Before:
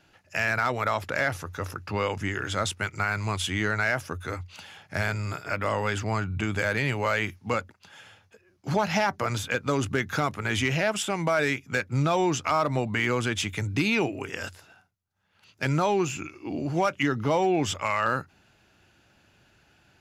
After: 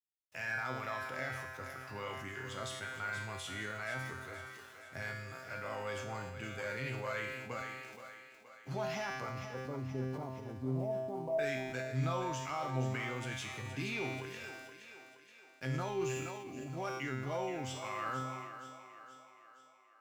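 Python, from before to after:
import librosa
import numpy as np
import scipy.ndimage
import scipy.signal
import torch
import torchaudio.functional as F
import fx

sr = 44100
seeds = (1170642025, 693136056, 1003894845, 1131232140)

y = fx.steep_lowpass(x, sr, hz=1000.0, slope=96, at=(9.29, 11.39))
y = np.where(np.abs(y) >= 10.0 ** (-44.5 / 20.0), y, 0.0)
y = fx.comb_fb(y, sr, f0_hz=130.0, decay_s=0.95, harmonics='all', damping=0.0, mix_pct=90)
y = fx.echo_thinned(y, sr, ms=473, feedback_pct=55, hz=280.0, wet_db=-10)
y = fx.sustainer(y, sr, db_per_s=32.0)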